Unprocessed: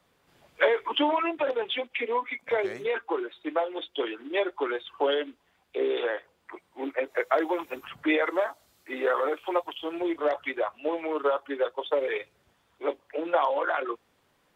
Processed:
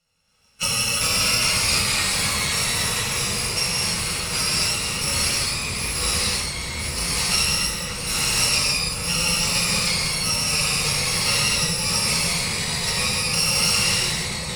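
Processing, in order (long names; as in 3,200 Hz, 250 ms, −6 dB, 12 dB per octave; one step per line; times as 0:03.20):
samples in bit-reversed order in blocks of 128 samples
parametric band 110 Hz −5.5 dB 2.9 octaves
leveller curve on the samples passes 1
high-frequency loss of the air 71 metres
on a send: echo whose low-pass opens from repeat to repeat 544 ms, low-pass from 400 Hz, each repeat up 1 octave, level −3 dB
on the sum: delay with pitch and tempo change per echo 326 ms, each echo −2 semitones, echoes 3
reverb whose tail is shaped and stops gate 350 ms flat, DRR −7.5 dB
level +1.5 dB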